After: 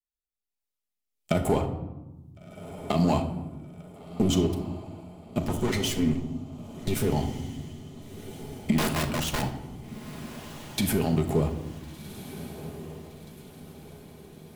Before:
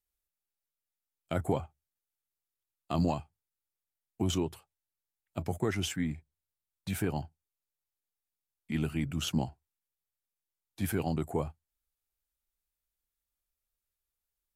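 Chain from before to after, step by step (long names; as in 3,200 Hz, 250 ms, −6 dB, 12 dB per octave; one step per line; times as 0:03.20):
0:05.43–0:07.08: lower of the sound and its delayed copy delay 8.1 ms
camcorder AGC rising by 15 dB per second
rotating-speaker cabinet horn 1.2 Hz, later 7.5 Hz, at 0:08.25
leveller curve on the samples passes 3
parametric band 1,600 Hz −8.5 dB 0.27 octaves
0:08.78–0:09.42: wrap-around overflow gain 19 dB
transient designer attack +1 dB, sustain +6 dB
feedback delay with all-pass diffusion 1,433 ms, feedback 49%, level −13.5 dB
convolution reverb RT60 1.1 s, pre-delay 5 ms, DRR 4.5 dB
level −5 dB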